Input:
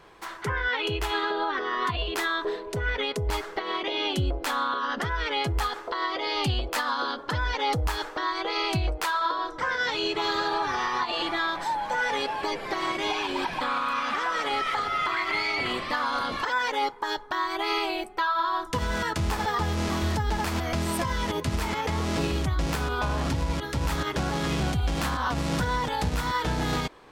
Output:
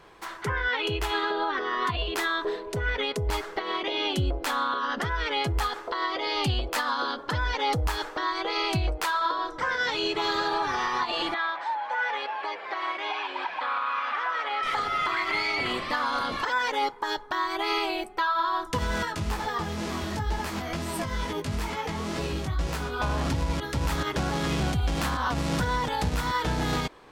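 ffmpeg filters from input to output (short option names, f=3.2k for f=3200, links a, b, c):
-filter_complex "[0:a]asettb=1/sr,asplit=3[a][b][c];[a]atrim=end=11.344[d];[b]atrim=start=11.34:end=14.63,asetpts=PTS-STARTPTS,afade=t=in:d=0.004:c=qsin,afade=t=out:st=3.286:d=0.004:c=qsin,highpass=670,lowpass=2.8k[e];[c]atrim=start=14.626[f];[d][e]acrossfade=d=0.004:c1=hsin:c2=qsin[g];[g][f]acrossfade=d=0.004:c1=qsin:c2=hsin,asettb=1/sr,asplit=3[h][i][j];[h]atrim=end=19.054[k];[i]atrim=start=19.05:end=23,asetpts=PTS-STARTPTS,afade=t=in:d=0.004:c=qsin,afade=t=out:st=3.946:d=0.004:c=qsin,flanger=delay=16:depth=3.9:speed=2.2[l];[j]atrim=start=22.996[m];[k][l]acrossfade=d=0.004:c1=hsin:c2=qsin[n];[n][m]acrossfade=d=0.004:c1=qsin:c2=hsin"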